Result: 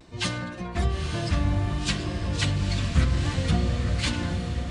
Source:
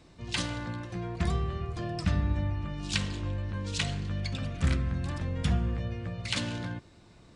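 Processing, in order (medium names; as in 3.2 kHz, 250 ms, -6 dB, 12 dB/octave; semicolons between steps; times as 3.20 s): plain phase-vocoder stretch 0.64×; vibrato 0.6 Hz 39 cents; echo that smears into a reverb 918 ms, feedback 54%, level -5.5 dB; trim +8 dB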